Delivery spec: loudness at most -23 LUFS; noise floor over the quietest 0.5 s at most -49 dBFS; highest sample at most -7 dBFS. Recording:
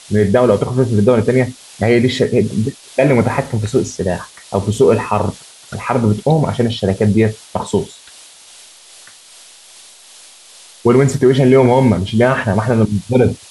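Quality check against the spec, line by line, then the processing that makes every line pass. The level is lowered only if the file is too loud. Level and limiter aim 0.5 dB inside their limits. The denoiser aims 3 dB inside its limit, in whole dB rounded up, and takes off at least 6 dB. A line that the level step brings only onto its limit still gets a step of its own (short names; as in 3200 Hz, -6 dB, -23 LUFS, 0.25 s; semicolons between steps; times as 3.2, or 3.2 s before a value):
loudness -15.0 LUFS: fail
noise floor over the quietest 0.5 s -42 dBFS: fail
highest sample -1.5 dBFS: fail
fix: gain -8.5 dB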